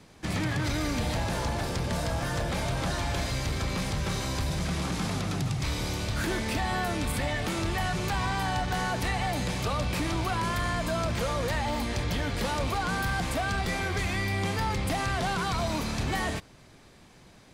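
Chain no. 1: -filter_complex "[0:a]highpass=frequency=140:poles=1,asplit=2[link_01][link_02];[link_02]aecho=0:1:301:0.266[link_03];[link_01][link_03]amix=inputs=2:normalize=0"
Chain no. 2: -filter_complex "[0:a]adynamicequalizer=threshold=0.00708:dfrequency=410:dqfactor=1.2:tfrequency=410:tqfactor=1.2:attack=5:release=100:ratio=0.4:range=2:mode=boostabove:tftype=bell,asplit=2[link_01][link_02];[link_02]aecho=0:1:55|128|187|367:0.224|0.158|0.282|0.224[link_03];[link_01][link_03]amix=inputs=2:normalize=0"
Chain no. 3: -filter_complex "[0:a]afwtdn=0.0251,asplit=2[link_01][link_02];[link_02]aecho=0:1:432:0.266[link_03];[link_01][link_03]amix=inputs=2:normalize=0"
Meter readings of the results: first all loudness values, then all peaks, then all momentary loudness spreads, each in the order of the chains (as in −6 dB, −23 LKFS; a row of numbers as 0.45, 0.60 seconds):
−30.5, −28.0, −30.5 LKFS; −19.0, −16.5, −19.5 dBFS; 3, 2, 3 LU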